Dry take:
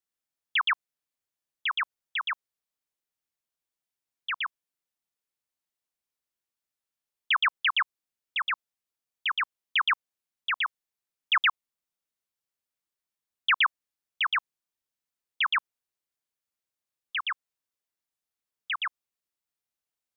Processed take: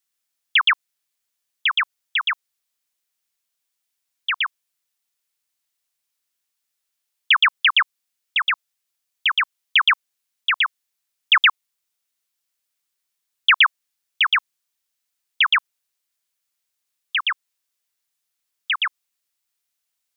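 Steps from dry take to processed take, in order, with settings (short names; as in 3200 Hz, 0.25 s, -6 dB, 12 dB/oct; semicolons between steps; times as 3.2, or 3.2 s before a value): tilt shelf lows -6 dB, about 1200 Hz; gain +6 dB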